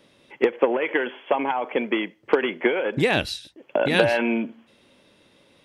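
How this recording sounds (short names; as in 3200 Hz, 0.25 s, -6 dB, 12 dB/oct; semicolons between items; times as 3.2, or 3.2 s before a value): noise floor -59 dBFS; spectral tilt -3.0 dB/oct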